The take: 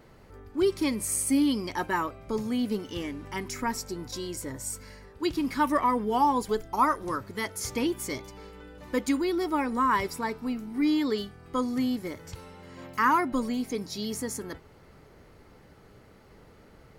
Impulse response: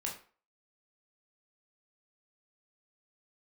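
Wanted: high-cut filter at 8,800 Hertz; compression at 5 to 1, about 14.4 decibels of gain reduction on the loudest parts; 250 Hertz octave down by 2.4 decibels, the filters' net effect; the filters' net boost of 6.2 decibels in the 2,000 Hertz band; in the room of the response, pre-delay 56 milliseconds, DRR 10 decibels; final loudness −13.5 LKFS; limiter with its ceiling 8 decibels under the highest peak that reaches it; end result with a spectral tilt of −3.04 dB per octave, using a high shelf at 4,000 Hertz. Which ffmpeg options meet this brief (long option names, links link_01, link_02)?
-filter_complex "[0:a]lowpass=8800,equalizer=frequency=250:width_type=o:gain=-3,equalizer=frequency=2000:width_type=o:gain=6,highshelf=frequency=4000:gain=7.5,acompressor=threshold=-33dB:ratio=5,alimiter=level_in=3.5dB:limit=-24dB:level=0:latency=1,volume=-3.5dB,asplit=2[link_01][link_02];[1:a]atrim=start_sample=2205,adelay=56[link_03];[link_02][link_03]afir=irnorm=-1:irlink=0,volume=-11dB[link_04];[link_01][link_04]amix=inputs=2:normalize=0,volume=24dB"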